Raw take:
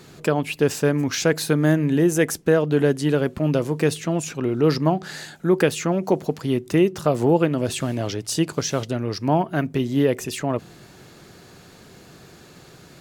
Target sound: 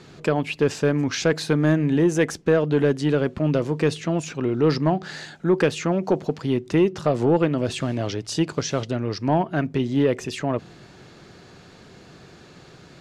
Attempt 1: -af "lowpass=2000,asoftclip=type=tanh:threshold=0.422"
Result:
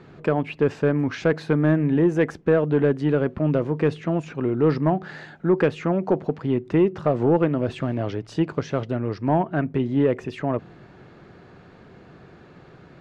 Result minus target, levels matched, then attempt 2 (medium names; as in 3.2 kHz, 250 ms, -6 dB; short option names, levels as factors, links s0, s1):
8 kHz band -16.5 dB
-af "lowpass=5700,asoftclip=type=tanh:threshold=0.422"